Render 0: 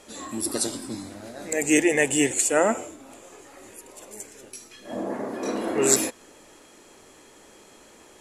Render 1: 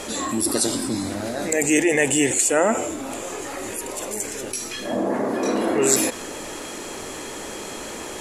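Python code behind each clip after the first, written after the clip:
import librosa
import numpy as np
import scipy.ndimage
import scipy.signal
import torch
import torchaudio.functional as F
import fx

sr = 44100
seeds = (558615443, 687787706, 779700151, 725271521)

y = fx.env_flatten(x, sr, amount_pct=50)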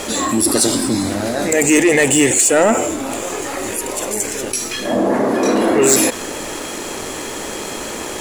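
y = fx.leveller(x, sr, passes=2)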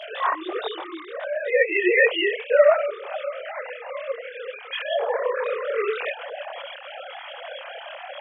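y = fx.sine_speech(x, sr)
y = scipy.signal.sosfilt(scipy.signal.butter(4, 540.0, 'highpass', fs=sr, output='sos'), y)
y = fx.chorus_voices(y, sr, voices=6, hz=1.3, base_ms=25, depth_ms=3.0, mix_pct=55)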